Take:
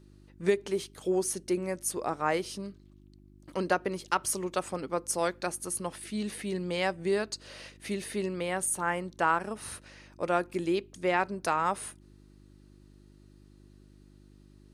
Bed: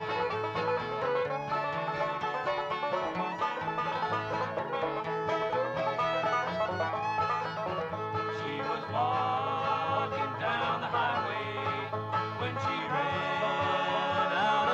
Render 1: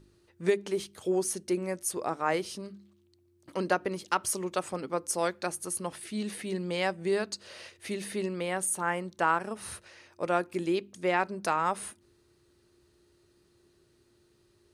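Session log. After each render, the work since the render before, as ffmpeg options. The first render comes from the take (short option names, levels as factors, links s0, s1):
-af "bandreject=f=50:t=h:w=4,bandreject=f=100:t=h:w=4,bandreject=f=150:t=h:w=4,bandreject=f=200:t=h:w=4,bandreject=f=250:t=h:w=4,bandreject=f=300:t=h:w=4"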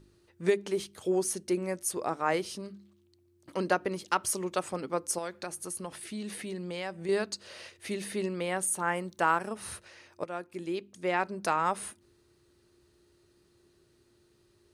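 -filter_complex "[0:a]asettb=1/sr,asplit=3[s0][s1][s2];[s0]atrim=end=5.184[s3];[s1]atrim=start=5.18:end=7.09,asetpts=PTS-STARTPTS,afade=t=in:d=0.004:c=qsin,afade=t=out:st=1.906:d=0.004:c=qsin,acompressor=threshold=0.0178:ratio=2.5:attack=3.2:release=140:knee=1:detection=peak[s4];[s2]atrim=start=7.086[s5];[s3][s4]acrossfade=d=0.004:c1=hsin:c2=qsin[s6];[s6][s5]acrossfade=d=0.004:c1=qsin:c2=hsin,asettb=1/sr,asplit=3[s7][s8][s9];[s7]atrim=end=8.954[s10];[s8]atrim=start=8.95:end=9.49,asetpts=PTS-STARTPTS,afade=t=in:d=0.004:c=qsin,afade=t=out:st=0.536:d=0.004:c=qsin,highshelf=f=11000:g=11[s11];[s9]atrim=start=9.486[s12];[s10][s11]acrossfade=d=0.004:c1=hsin:c2=qsin[s13];[s13][s12]acrossfade=d=0.004:c1=qsin:c2=hsin,asplit=2[s14][s15];[s14]atrim=end=10.24,asetpts=PTS-STARTPTS,afade=t=out:st=10.236:d=0.004:c=hsin:silence=0.237137[s16];[s15]atrim=start=10.24,asetpts=PTS-STARTPTS,afade=t=in:d=1.22:silence=0.237137[s17];[s16][s17]concat=n=2:v=0:a=1"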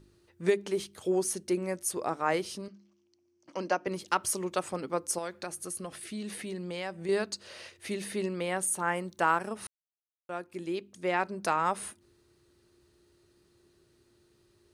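-filter_complex "[0:a]asettb=1/sr,asplit=3[s0][s1][s2];[s0]atrim=end=2.684[s3];[s1]atrim=start=2.68:end=3.87,asetpts=PTS-STARTPTS,afade=t=in:d=0.004:c=qsin,afade=t=out:st=1.186:d=0.004:c=qsin,highpass=250,equalizer=f=410:t=q:w=4:g=-7,equalizer=f=1300:t=q:w=4:g=-4,equalizer=f=1800:t=q:w=4:g=-4,equalizer=f=3800:t=q:w=4:g=-10,equalizer=f=5800:t=q:w=4:g=8,lowpass=f=6500:w=0.5412,lowpass=f=6500:w=1.3066[s4];[s2]atrim=start=3.866[s5];[s3][s4]acrossfade=d=0.004:c1=hsin:c2=qsin[s6];[s6][s5]acrossfade=d=0.004:c1=qsin:c2=hsin,asettb=1/sr,asplit=3[s7][s8][s9];[s7]atrim=end=5.534[s10];[s8]atrim=start=5.53:end=6.25,asetpts=PTS-STARTPTS,afade=t=in:d=0.004:c=qsin,afade=t=out:st=0.716:d=0.004:c=qsin,asuperstop=centerf=920:order=4:qfactor=5.4[s11];[s9]atrim=start=6.246[s12];[s10][s11]acrossfade=d=0.004:c1=hsin:c2=qsin[s13];[s13][s12]acrossfade=d=0.004:c1=qsin:c2=hsin,asplit=3[s14][s15][s16];[s14]atrim=end=9.67,asetpts=PTS-STARTPTS,afade=t=out:st=9.666:d=0.004:c=hsin[s17];[s15]atrim=start=9.67:end=10.29,asetpts=PTS-STARTPTS,volume=0[s18];[s16]atrim=start=10.29,asetpts=PTS-STARTPTS,afade=t=in:d=0.004:c=hsin[s19];[s17][s18][s19]concat=n=3:v=0:a=1"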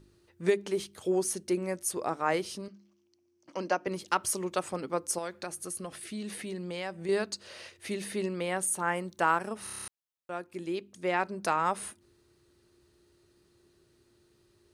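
-filter_complex "[0:a]asplit=9[s0][s1][s2][s3][s4][s5][s6][s7][s8];[s0]atrim=end=9.672[s9];[s1]atrim=start=9.638:end=9.672[s10];[s2]atrim=start=9.638:end=9.672[s11];[s3]atrim=start=9.638:end=9.672[s12];[s4]atrim=start=9.638:end=9.672[s13];[s5]atrim=start=9.638:end=9.672[s14];[s6]atrim=start=9.638:end=9.672[s15];[s7]atrim=start=9.638:end=9.672[s16];[s8]atrim=start=9.878[s17];[s9][s10]acrossfade=d=0.004:c1=hsin:c2=hsin[s18];[s18][s11]acrossfade=d=0.004:c1=hsin:c2=hsin[s19];[s19][s12]acrossfade=d=0.004:c1=hsin:c2=hsin[s20];[s20][s13]acrossfade=d=0.004:c1=hsin:c2=hsin[s21];[s21][s14]acrossfade=d=0.004:c1=hsin:c2=hsin[s22];[s22][s15]acrossfade=d=0.004:c1=hsin:c2=hsin[s23];[s23][s16]acrossfade=d=0.004:c1=hsin:c2=hsin[s24];[s24][s17]acrossfade=d=0.004:c1=hsin:c2=hsin"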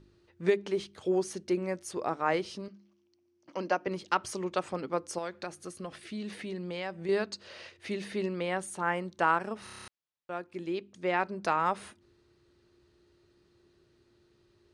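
-af "lowpass=5000"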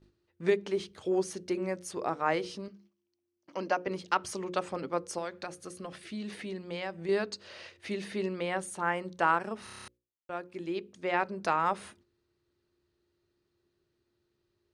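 -af "agate=range=0.282:threshold=0.00112:ratio=16:detection=peak,bandreject=f=60:t=h:w=6,bandreject=f=120:t=h:w=6,bandreject=f=180:t=h:w=6,bandreject=f=240:t=h:w=6,bandreject=f=300:t=h:w=6,bandreject=f=360:t=h:w=6,bandreject=f=420:t=h:w=6,bandreject=f=480:t=h:w=6,bandreject=f=540:t=h:w=6"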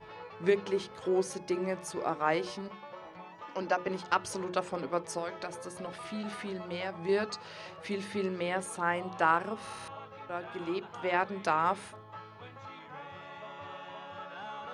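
-filter_complex "[1:a]volume=0.168[s0];[0:a][s0]amix=inputs=2:normalize=0"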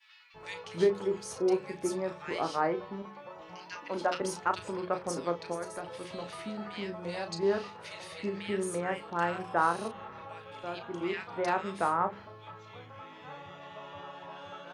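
-filter_complex "[0:a]asplit=2[s0][s1];[s1]adelay=35,volume=0.355[s2];[s0][s2]amix=inputs=2:normalize=0,acrossover=split=1900[s3][s4];[s3]adelay=340[s5];[s5][s4]amix=inputs=2:normalize=0"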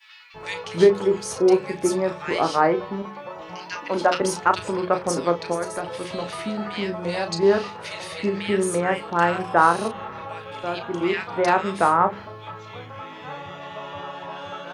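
-af "volume=3.35"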